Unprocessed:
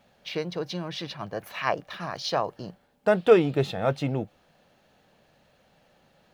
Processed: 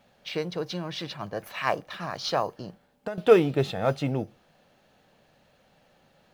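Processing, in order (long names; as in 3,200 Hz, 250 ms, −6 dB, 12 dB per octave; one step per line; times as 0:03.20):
on a send at −19 dB: bad sample-rate conversion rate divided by 8×, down none, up hold + convolution reverb RT60 0.30 s, pre-delay 4 ms
0:02.55–0:03.18: on the sum: downward compressor 6 to 1, threshold −32 dBFS, peak gain reduction 15 dB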